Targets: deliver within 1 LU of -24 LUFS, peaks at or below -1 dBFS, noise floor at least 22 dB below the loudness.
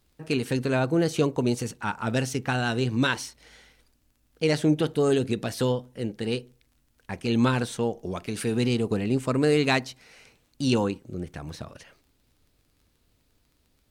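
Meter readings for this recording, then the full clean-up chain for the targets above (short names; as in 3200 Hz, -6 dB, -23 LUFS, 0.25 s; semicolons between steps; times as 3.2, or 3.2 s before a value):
ticks 19/s; loudness -26.0 LUFS; peak -8.0 dBFS; loudness target -24.0 LUFS
-> de-click; gain +2 dB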